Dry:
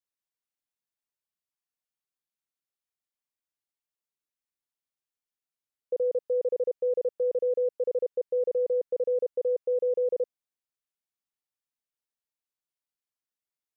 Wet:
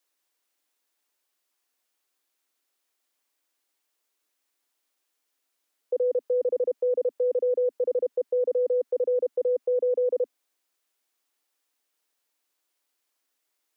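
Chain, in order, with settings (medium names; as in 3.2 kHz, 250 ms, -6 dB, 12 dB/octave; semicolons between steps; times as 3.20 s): steep high-pass 250 Hz 72 dB/octave; in parallel at +1.5 dB: compressor with a negative ratio -37 dBFS, ratio -1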